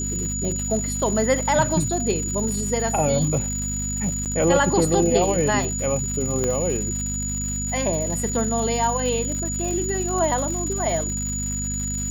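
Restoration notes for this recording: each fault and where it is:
crackle 240 per s -29 dBFS
hum 50 Hz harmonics 5 -29 dBFS
whine 6.9 kHz -27 dBFS
4.25–4.26 s: dropout 8.2 ms
6.44 s: pop -11 dBFS

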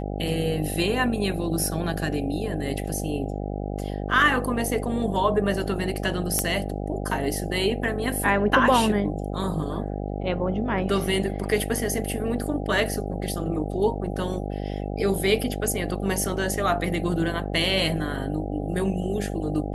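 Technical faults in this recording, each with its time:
buzz 50 Hz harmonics 16 -30 dBFS
6.39 s: pop -7 dBFS

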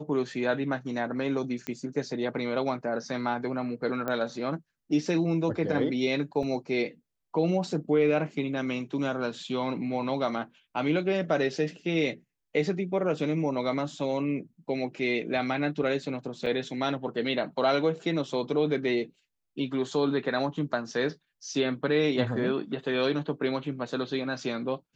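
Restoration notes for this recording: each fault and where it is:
1.67 s: pop -18 dBFS
4.08 s: pop -18 dBFS
6.43 s: dropout 2.4 ms
16.46 s: dropout 5 ms

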